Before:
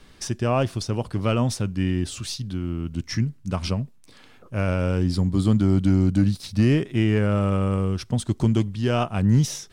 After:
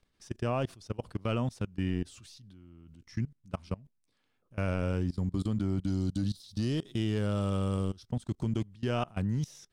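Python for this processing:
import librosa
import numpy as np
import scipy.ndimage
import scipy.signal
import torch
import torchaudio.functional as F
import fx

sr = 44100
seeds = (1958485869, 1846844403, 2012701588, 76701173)

y = fx.high_shelf_res(x, sr, hz=2900.0, db=6.5, q=3.0, at=(5.87, 8.06))
y = fx.level_steps(y, sr, step_db=23)
y = y * librosa.db_to_amplitude(-6.5)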